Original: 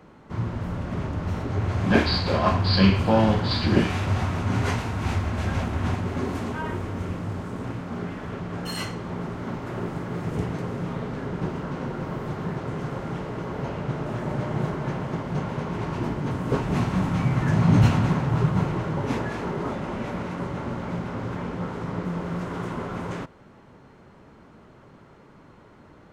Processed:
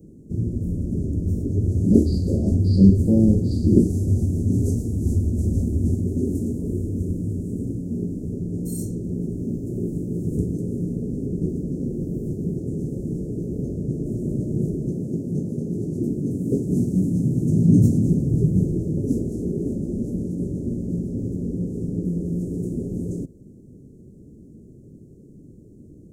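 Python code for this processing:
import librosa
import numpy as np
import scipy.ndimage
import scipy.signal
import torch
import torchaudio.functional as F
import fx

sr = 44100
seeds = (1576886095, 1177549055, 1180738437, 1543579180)

y = fx.highpass(x, sr, hz=110.0, slope=12, at=(14.91, 18.07))
y = scipy.signal.sosfilt(scipy.signal.cheby2(4, 70, [1100.0, 2800.0], 'bandstop', fs=sr, output='sos'), y)
y = fx.dynamic_eq(y, sr, hz=130.0, q=2.1, threshold_db=-38.0, ratio=4.0, max_db=-6)
y = y * 10.0 ** (7.0 / 20.0)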